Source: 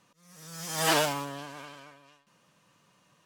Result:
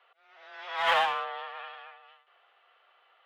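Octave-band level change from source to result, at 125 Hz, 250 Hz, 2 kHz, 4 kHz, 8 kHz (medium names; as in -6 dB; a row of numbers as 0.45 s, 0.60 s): under -25 dB, under -20 dB, +2.5 dB, -2.0 dB, under -20 dB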